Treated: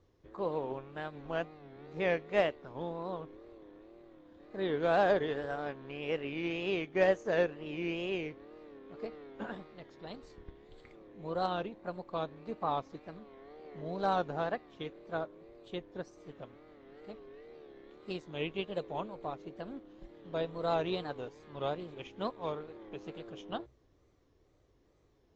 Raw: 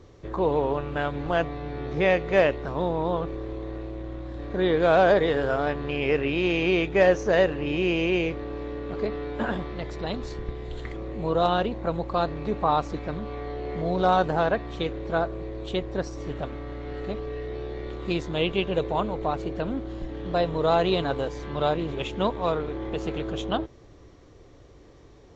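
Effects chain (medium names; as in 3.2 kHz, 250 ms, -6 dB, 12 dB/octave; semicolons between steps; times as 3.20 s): hum notches 60/120 Hz; wow and flutter 120 cents; upward expansion 1.5:1, over -36 dBFS; trim -7.5 dB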